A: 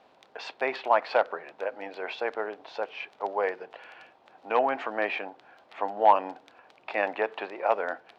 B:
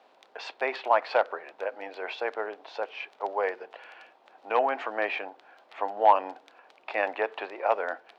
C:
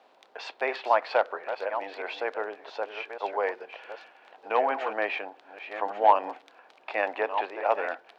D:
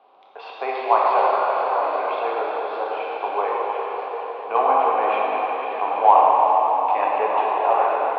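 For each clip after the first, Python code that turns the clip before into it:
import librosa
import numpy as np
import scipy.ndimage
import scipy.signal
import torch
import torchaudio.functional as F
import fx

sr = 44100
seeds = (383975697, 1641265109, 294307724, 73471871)

y1 = scipy.signal.sosfilt(scipy.signal.butter(2, 310.0, 'highpass', fs=sr, output='sos'), x)
y2 = fx.reverse_delay(y1, sr, ms=674, wet_db=-9.5)
y3 = fx.cabinet(y2, sr, low_hz=140.0, low_slope=12, high_hz=3700.0, hz=(150.0, 400.0, 770.0, 1100.0, 1800.0), db=(5, 4, 7, 9, -9))
y3 = fx.rev_plate(y3, sr, seeds[0], rt60_s=5.0, hf_ratio=0.9, predelay_ms=0, drr_db=-5.5)
y3 = y3 * 10.0 ** (-2.0 / 20.0)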